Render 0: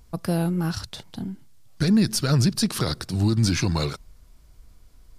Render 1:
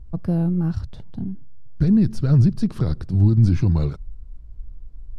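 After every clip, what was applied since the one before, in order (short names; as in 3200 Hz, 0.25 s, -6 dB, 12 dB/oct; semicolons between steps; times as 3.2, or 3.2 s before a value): tilt -4.5 dB/oct; gain -7.5 dB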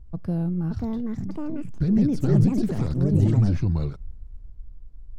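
echoes that change speed 0.609 s, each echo +5 st, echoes 2; gain -5 dB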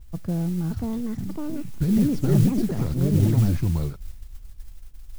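modulation noise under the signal 24 dB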